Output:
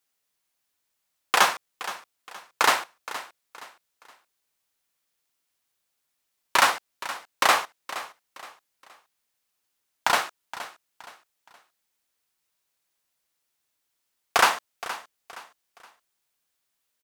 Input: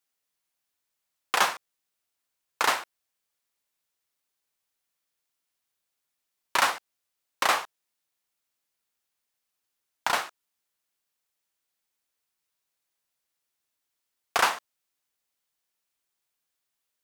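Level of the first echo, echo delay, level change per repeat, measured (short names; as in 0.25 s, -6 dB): -14.5 dB, 0.47 s, -9.5 dB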